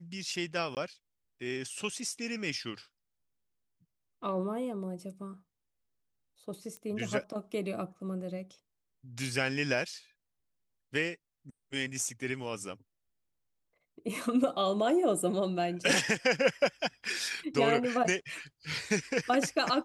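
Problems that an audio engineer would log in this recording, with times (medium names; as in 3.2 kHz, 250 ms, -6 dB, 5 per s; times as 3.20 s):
0.75–0.77 s: dropout 18 ms
6.77 s: pop -29 dBFS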